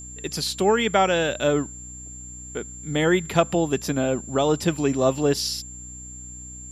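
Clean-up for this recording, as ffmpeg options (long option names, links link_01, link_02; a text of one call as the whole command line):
ffmpeg -i in.wav -af "bandreject=frequency=62:width_type=h:width=4,bandreject=frequency=124:width_type=h:width=4,bandreject=frequency=186:width_type=h:width=4,bandreject=frequency=248:width_type=h:width=4,bandreject=frequency=310:width_type=h:width=4,bandreject=frequency=7300:width=30,agate=range=-21dB:threshold=-31dB" out.wav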